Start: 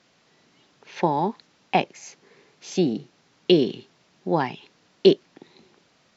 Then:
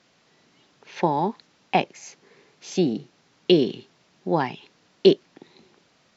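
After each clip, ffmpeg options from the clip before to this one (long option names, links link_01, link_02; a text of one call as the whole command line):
ffmpeg -i in.wav -af anull out.wav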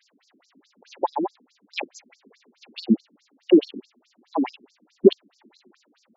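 ffmpeg -i in.wav -af "lowshelf=frequency=300:width_type=q:width=1.5:gain=9,afftfilt=real='re*between(b*sr/1024,260*pow(6400/260,0.5+0.5*sin(2*PI*4.7*pts/sr))/1.41,260*pow(6400/260,0.5+0.5*sin(2*PI*4.7*pts/sr))*1.41)':imag='im*between(b*sr/1024,260*pow(6400/260,0.5+0.5*sin(2*PI*4.7*pts/sr))/1.41,260*pow(6400/260,0.5+0.5*sin(2*PI*4.7*pts/sr))*1.41)':win_size=1024:overlap=0.75,volume=5dB" out.wav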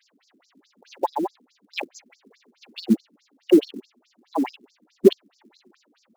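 ffmpeg -i in.wav -af "acrusher=bits=7:mode=log:mix=0:aa=0.000001" out.wav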